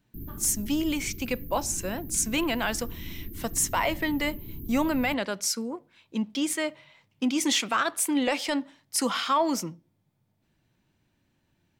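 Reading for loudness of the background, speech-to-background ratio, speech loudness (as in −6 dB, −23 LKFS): −41.5 LKFS, 14.0 dB, −27.5 LKFS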